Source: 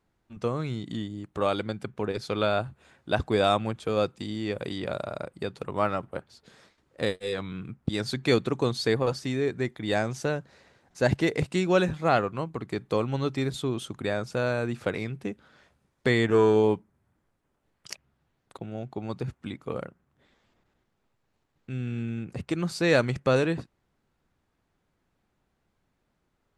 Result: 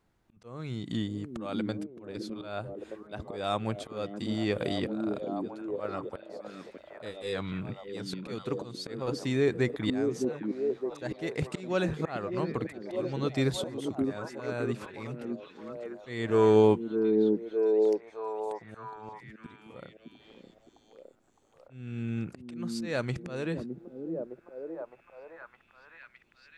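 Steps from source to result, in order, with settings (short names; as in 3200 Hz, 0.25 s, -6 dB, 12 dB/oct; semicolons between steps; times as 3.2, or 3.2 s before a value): auto swell 0.541 s; delay with a stepping band-pass 0.612 s, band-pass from 280 Hz, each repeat 0.7 oct, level 0 dB; gain +1.5 dB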